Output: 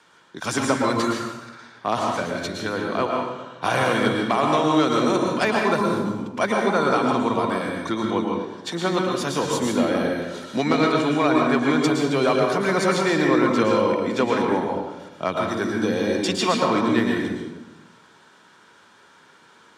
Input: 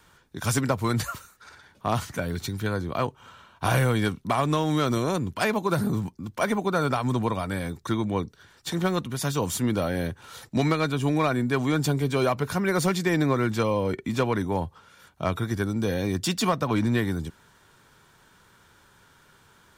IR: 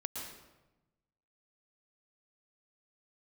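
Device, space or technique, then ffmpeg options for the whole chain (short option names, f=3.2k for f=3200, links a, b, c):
supermarket ceiling speaker: -filter_complex "[0:a]highpass=250,lowpass=6.7k[a];[1:a]atrim=start_sample=2205[b];[a][b]afir=irnorm=-1:irlink=0,volume=5.5dB"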